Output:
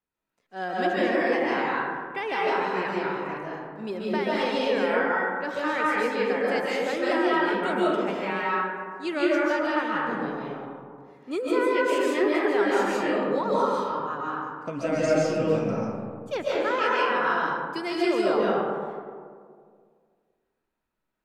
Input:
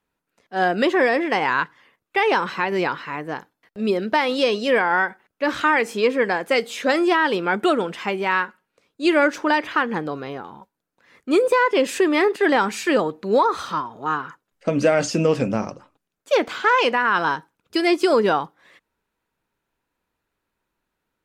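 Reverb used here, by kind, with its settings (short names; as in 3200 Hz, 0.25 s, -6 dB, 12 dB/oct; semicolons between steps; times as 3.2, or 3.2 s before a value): digital reverb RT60 2 s, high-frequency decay 0.35×, pre-delay 0.105 s, DRR -6.5 dB; gain -12.5 dB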